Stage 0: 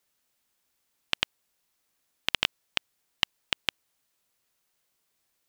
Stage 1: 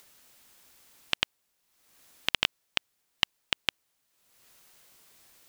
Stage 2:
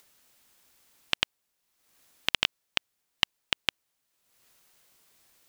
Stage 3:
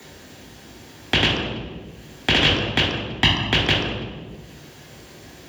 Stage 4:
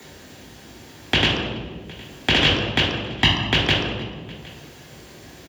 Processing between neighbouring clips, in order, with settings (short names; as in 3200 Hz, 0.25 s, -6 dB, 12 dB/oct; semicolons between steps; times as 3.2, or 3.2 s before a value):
upward compressor, threshold -44 dBFS
transient shaper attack +6 dB, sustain +2 dB; gain -5 dB
reverb RT60 1.2 s, pre-delay 3 ms, DRR -9.5 dB; three-band squash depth 40%; gain -7.5 dB
echo 0.762 s -23 dB